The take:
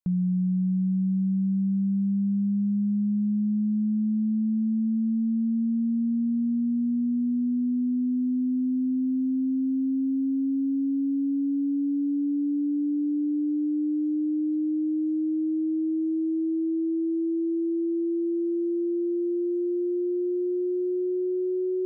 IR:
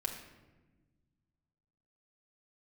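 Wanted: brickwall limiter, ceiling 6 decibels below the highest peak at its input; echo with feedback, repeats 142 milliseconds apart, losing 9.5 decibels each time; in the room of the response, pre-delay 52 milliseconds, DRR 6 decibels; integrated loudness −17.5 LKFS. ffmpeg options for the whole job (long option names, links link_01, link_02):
-filter_complex "[0:a]alimiter=level_in=3dB:limit=-24dB:level=0:latency=1,volume=-3dB,aecho=1:1:142|284|426|568:0.335|0.111|0.0365|0.012,asplit=2[link_01][link_02];[1:a]atrim=start_sample=2205,adelay=52[link_03];[link_02][link_03]afir=irnorm=-1:irlink=0,volume=-7.5dB[link_04];[link_01][link_04]amix=inputs=2:normalize=0,volume=11.5dB"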